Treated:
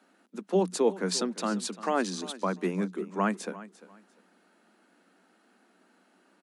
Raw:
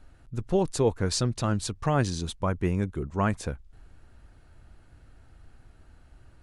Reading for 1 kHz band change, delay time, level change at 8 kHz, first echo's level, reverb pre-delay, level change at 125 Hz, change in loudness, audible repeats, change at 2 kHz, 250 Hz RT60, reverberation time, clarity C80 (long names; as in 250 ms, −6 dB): 0.0 dB, 347 ms, −1.0 dB, −17.0 dB, no reverb audible, −12.0 dB, −1.5 dB, 2, 0.0 dB, no reverb audible, no reverb audible, no reverb audible